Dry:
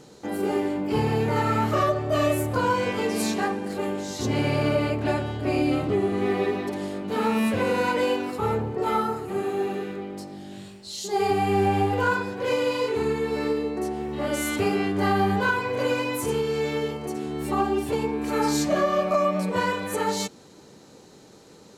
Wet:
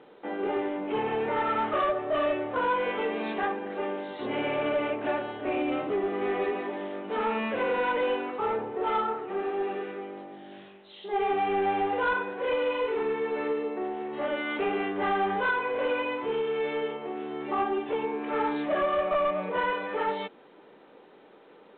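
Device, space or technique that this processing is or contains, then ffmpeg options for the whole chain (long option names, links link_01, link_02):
telephone: -af "highpass=380,lowpass=3000,asoftclip=type=tanh:threshold=-20dB" -ar 8000 -c:a pcm_mulaw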